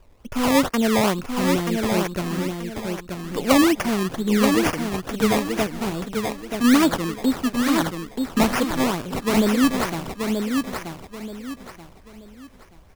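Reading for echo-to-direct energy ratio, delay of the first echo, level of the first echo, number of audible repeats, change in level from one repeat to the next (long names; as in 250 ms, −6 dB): −4.5 dB, 931 ms, −5.0 dB, 3, −10.0 dB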